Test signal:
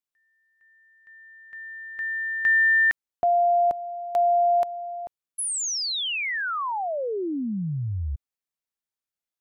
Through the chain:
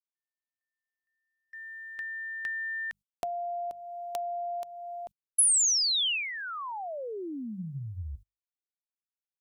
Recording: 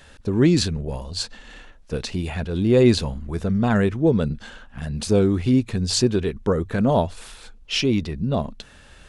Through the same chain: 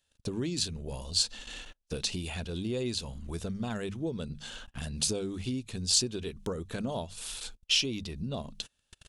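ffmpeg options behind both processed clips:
ffmpeg -i in.wav -af "bandreject=frequency=50:width_type=h:width=6,bandreject=frequency=100:width_type=h:width=6,bandreject=frequency=150:width_type=h:width=6,bandreject=frequency=200:width_type=h:width=6,agate=range=-30dB:threshold=-43dB:ratio=16:release=81:detection=rms,highshelf=frequency=9000:gain=-3.5,acompressor=threshold=-34dB:ratio=3:attack=75:release=296:knee=1:detection=rms,aexciter=amount=4.4:drive=1.9:freq=2700,volume=-3.5dB" out.wav

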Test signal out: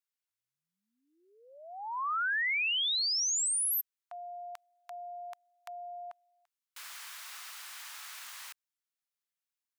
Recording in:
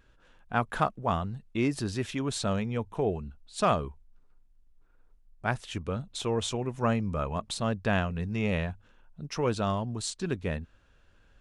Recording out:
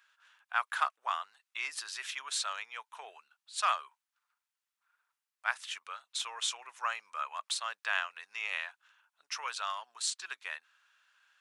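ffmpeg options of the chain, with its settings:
ffmpeg -i in.wav -af "highpass=frequency=1100:width=0.5412,highpass=frequency=1100:width=1.3066,volume=1.5dB" out.wav

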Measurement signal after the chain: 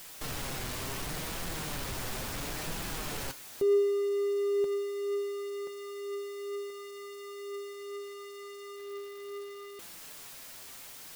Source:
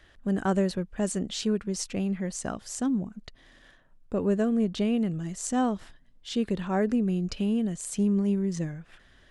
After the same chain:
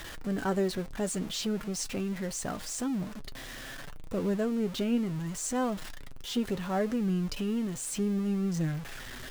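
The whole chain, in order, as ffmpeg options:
ffmpeg -i in.wav -af "aeval=exprs='val(0)+0.5*0.0224*sgn(val(0))':channel_layout=same,flanger=delay=5.8:depth=2.3:regen=51:speed=0.71:shape=triangular" out.wav

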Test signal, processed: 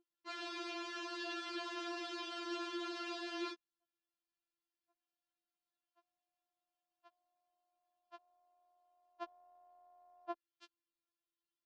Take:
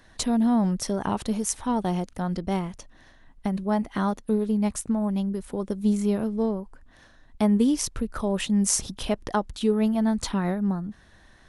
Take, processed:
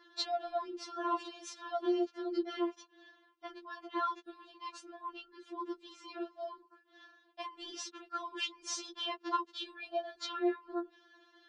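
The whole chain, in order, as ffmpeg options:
ffmpeg -i in.wav -af "aeval=exprs='val(0)+0.00282*(sin(2*PI*50*n/s)+sin(2*PI*2*50*n/s)/2+sin(2*PI*3*50*n/s)/3+sin(2*PI*4*50*n/s)/4+sin(2*PI*5*50*n/s)/5)':channel_layout=same,highpass=frequency=250:width=0.5412,highpass=frequency=250:width=1.3066,equalizer=frequency=430:width_type=q:width=4:gain=-5,equalizer=frequency=660:width_type=q:width=4:gain=-7,equalizer=frequency=960:width_type=q:width=4:gain=-3,equalizer=frequency=2100:width_type=q:width=4:gain=-10,equalizer=frequency=3800:width_type=q:width=4:gain=-3,lowpass=frequency=4300:width=0.5412,lowpass=frequency=4300:width=1.3066,afftfilt=real='re*4*eq(mod(b,16),0)':imag='im*4*eq(mod(b,16),0)':win_size=2048:overlap=0.75,volume=2dB" out.wav

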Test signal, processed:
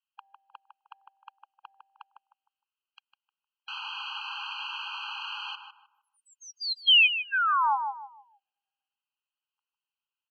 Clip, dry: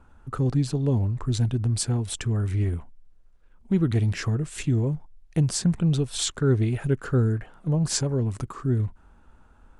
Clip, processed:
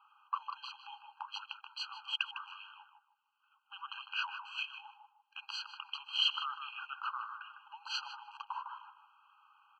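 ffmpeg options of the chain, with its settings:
ffmpeg -i in.wav -filter_complex "[0:a]highpass=frequency=240:width_type=q:width=0.5412,highpass=frequency=240:width_type=q:width=1.307,lowpass=frequency=3500:width_type=q:width=0.5176,lowpass=frequency=3500:width_type=q:width=0.7071,lowpass=frequency=3500:width_type=q:width=1.932,afreqshift=-170,aexciter=amount=3.9:drive=1.9:freq=2600,asplit=2[link_01][link_02];[link_02]adelay=154,lowpass=frequency=1300:poles=1,volume=-4.5dB,asplit=2[link_03][link_04];[link_04]adelay=154,lowpass=frequency=1300:poles=1,volume=0.35,asplit=2[link_05][link_06];[link_06]adelay=154,lowpass=frequency=1300:poles=1,volume=0.35,asplit=2[link_07][link_08];[link_08]adelay=154,lowpass=frequency=1300:poles=1,volume=0.35[link_09];[link_01][link_03][link_05][link_07][link_09]amix=inputs=5:normalize=0,afftfilt=real='re*eq(mod(floor(b*sr/1024/810),2),1)':imag='im*eq(mod(floor(b*sr/1024/810),2),1)':win_size=1024:overlap=0.75" out.wav

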